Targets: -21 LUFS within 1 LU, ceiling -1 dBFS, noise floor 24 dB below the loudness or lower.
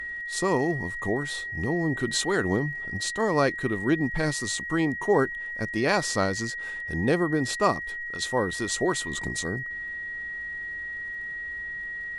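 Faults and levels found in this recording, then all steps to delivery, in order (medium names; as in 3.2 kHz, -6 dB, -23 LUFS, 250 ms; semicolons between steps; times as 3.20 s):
tick rate 59 per s; steady tone 1.9 kHz; tone level -32 dBFS; loudness -27.5 LUFS; peak level -8.0 dBFS; loudness target -21.0 LUFS
-> de-click; band-stop 1.9 kHz, Q 30; trim +6.5 dB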